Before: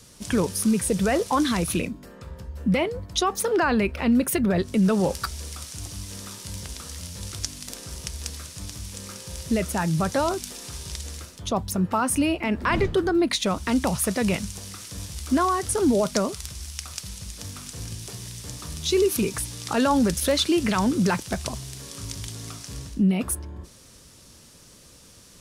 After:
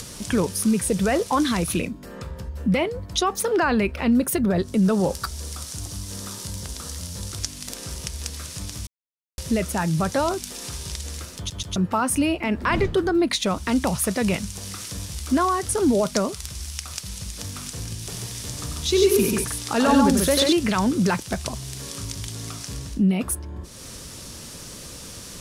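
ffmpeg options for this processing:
-filter_complex "[0:a]asettb=1/sr,asplit=3[a][b][c];[a]atrim=end=4.104[d];[b]atrim=start=4.1:end=7.38,asetpts=PTS-STARTPTS,afade=t=in:d=0.004:c=qsin,afade=t=out:st=3.276:d=0.004:c=qsin,equalizer=f=2.4k:t=o:w=0.95:g=-5[e];[c]atrim=start=7.376[f];[d][e]acrossfade=d=0.004:c1=hsin:c2=qsin[g];[g][f]acrossfade=d=0.004:c1=qsin:c2=hsin,asettb=1/sr,asplit=3[h][i][j];[h]atrim=end=17.984[k];[i]atrim=start=17.98:end=20.53,asetpts=PTS-STARTPTS,afade=t=in:d=0.004:c=qsin,afade=t=out:st=2.546:d=0.004:c=qsin,aecho=1:1:93|140:0.562|0.668,atrim=end_sample=112455[l];[j]atrim=start=20.526[m];[k][l]acrossfade=d=0.004:c1=hsin:c2=qsin[n];[n][m]acrossfade=d=0.004:c1=qsin:c2=hsin,asplit=6[o][p][q][r][s][t];[o]atrim=end=8.87,asetpts=PTS-STARTPTS,afade=t=out:st=8.866:d=0.004:c=hsin[u];[p]atrim=start=8.87:end=9.38,asetpts=PTS-STARTPTS,volume=0[v];[q]atrim=start=9.38:end=11.502,asetpts=PTS-STARTPTS,afade=t=in:d=0.004:c=hsin[w];[r]atrim=start=11.368:end=11.502[x];[s]atrim=start=11.368:end=11.502[y];[t]atrim=start=11.758[z];[u][v][w]concat=n=3:v=0:a=1[aa];[aa][x]acrossfade=d=0.004:c1=hsin:c2=hsin[ab];[ab][y]acrossfade=d=0.004:c1=hsin:c2=hsin[ac];[ac][z]acrossfade=d=0.004:c1=hsin:c2=hsin,acompressor=mode=upward:threshold=-28dB:ratio=2.5,volume=1dB"

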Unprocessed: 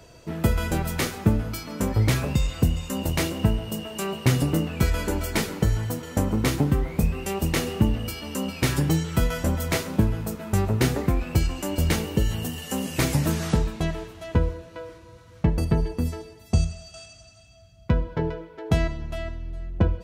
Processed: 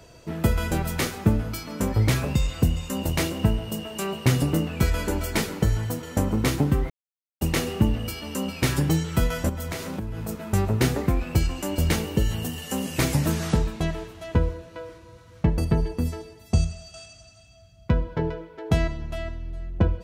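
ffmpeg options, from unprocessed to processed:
-filter_complex "[0:a]asettb=1/sr,asplit=3[a][b][c];[a]atrim=end=9.494[d];[b]atrim=start=9.49:end=10.29,asetpts=PTS-STARTPTS,afade=t=in:d=0.004:c=qsin,afade=t=out:st=0.796:d=0.004:c=qsin,acompressor=threshold=-27dB:ratio=8:attack=3.2:release=140:knee=1:detection=peak[e];[c]atrim=start=10.286[f];[d][e]acrossfade=d=0.004:c1=hsin:c2=qsin[g];[g][f]acrossfade=d=0.004:c1=qsin:c2=hsin,asplit=3[h][i][j];[h]atrim=end=6.9,asetpts=PTS-STARTPTS,afade=t=out:st=6.896:d=0.004:c=hsin[k];[i]atrim=start=6.9:end=7.41,asetpts=PTS-STARTPTS,volume=0[l];[j]atrim=start=7.41,asetpts=PTS-STARTPTS,afade=t=in:d=0.004:c=hsin[m];[k][l][m]concat=n=3:v=0:a=1"

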